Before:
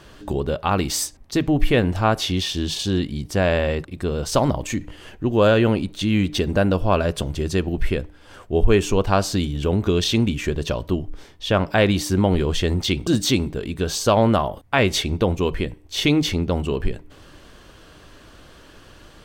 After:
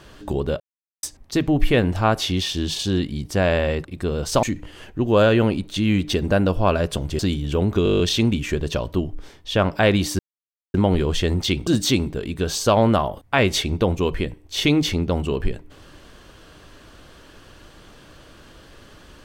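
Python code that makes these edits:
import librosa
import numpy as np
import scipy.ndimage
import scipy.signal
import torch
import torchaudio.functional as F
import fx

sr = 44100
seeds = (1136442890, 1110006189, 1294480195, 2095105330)

y = fx.edit(x, sr, fx.silence(start_s=0.6, length_s=0.43),
    fx.cut(start_s=4.43, length_s=0.25),
    fx.cut(start_s=7.44, length_s=1.86),
    fx.stutter(start_s=9.95, slice_s=0.02, count=9),
    fx.insert_silence(at_s=12.14, length_s=0.55), tone=tone)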